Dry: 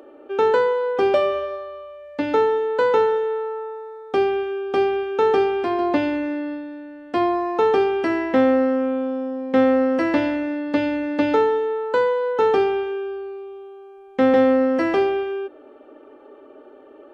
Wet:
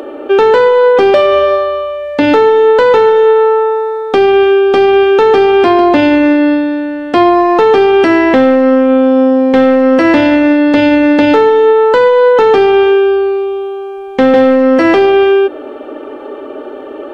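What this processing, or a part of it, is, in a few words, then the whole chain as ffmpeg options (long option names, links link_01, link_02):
mastering chain: -af "equalizer=frequency=3400:width_type=o:width=0.75:gain=3,acompressor=threshold=-26dB:ratio=1.5,asoftclip=type=tanh:threshold=-14.5dB,asoftclip=type=hard:threshold=-17dB,alimiter=level_in=21dB:limit=-1dB:release=50:level=0:latency=1,volume=-1dB"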